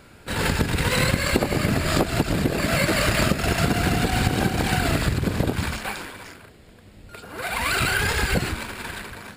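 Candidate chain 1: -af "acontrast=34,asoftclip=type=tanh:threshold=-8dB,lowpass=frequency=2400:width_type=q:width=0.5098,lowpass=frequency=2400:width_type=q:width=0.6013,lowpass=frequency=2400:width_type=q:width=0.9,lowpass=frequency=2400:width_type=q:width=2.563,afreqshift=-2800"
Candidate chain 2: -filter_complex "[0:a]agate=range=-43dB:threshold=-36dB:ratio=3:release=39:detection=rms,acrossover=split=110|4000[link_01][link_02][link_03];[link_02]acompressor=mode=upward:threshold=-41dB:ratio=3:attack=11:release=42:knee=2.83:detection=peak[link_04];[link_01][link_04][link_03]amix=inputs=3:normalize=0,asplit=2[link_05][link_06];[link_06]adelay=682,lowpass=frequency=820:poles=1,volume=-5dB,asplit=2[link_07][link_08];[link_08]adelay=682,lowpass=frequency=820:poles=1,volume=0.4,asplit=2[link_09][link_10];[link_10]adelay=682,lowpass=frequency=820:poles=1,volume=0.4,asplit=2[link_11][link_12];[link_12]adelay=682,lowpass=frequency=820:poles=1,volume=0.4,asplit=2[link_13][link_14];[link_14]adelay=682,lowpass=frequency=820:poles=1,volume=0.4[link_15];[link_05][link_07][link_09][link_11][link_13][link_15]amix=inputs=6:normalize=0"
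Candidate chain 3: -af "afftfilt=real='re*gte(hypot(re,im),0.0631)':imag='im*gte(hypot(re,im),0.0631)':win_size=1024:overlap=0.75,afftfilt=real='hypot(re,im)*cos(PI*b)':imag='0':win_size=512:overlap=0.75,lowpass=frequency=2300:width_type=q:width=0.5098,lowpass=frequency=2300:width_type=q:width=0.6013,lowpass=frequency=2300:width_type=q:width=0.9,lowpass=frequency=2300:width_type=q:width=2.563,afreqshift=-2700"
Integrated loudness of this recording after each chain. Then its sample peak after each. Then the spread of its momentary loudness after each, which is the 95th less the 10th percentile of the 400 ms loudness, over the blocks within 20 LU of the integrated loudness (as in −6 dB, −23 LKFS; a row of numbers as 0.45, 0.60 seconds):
−16.5, −22.5, −25.0 LKFS; −4.0, −4.5, −10.0 dBFS; 13, 12, 13 LU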